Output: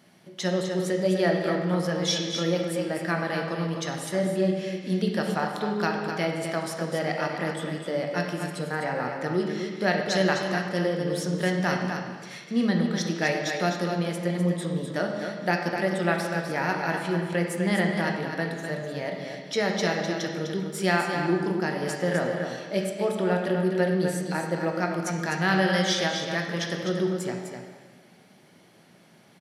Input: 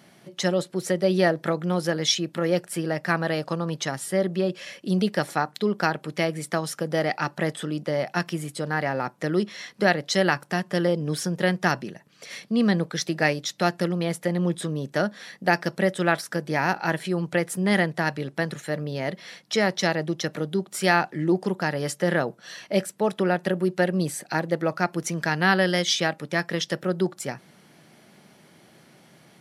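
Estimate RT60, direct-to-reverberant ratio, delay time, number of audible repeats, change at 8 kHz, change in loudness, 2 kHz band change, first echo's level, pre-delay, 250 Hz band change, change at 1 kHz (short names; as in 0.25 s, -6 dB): 1.5 s, 0.0 dB, 0.253 s, 1, -3.5 dB, -1.5 dB, -2.5 dB, -7.0 dB, 6 ms, -1.0 dB, -2.0 dB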